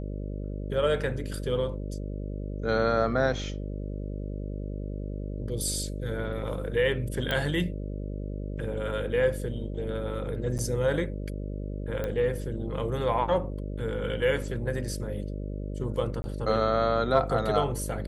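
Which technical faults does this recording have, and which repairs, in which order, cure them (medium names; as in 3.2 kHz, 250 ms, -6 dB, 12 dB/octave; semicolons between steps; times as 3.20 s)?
buzz 50 Hz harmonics 12 -34 dBFS
7.31 s: pop -15 dBFS
10.58–10.59 s: dropout 8.7 ms
12.04 s: pop -19 dBFS
16.22–16.24 s: dropout 20 ms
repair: de-click; de-hum 50 Hz, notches 12; interpolate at 10.58 s, 8.7 ms; interpolate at 16.22 s, 20 ms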